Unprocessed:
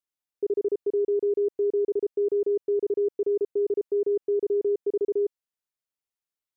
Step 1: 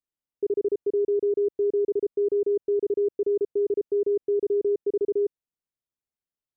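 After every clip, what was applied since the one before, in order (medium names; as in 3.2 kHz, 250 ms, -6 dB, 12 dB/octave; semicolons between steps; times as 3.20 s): tilt shelf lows +6.5 dB, about 650 Hz; trim -2 dB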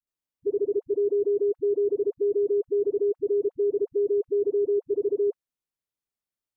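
phase dispersion highs, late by 72 ms, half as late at 400 Hz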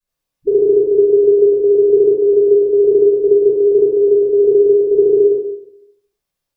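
reverberation RT60 0.65 s, pre-delay 3 ms, DRR -13.5 dB; trim -3.5 dB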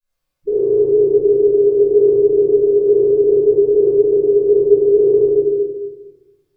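simulated room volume 460 m³, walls mixed, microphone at 5.2 m; trim -9.5 dB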